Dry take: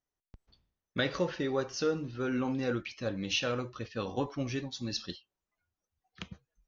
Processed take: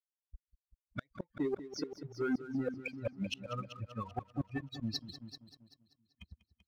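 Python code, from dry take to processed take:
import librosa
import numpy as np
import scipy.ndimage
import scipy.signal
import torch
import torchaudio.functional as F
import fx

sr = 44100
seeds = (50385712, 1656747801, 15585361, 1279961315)

y = fx.bin_expand(x, sr, power=3.0)
y = fx.air_absorb(y, sr, metres=180.0)
y = fx.gate_flip(y, sr, shuts_db=-30.0, range_db=-38)
y = fx.echo_heads(y, sr, ms=193, heads='first and second', feedback_pct=41, wet_db=-14.5)
y = fx.leveller(y, sr, passes=1)
y = F.gain(torch.from_numpy(y), 4.0).numpy()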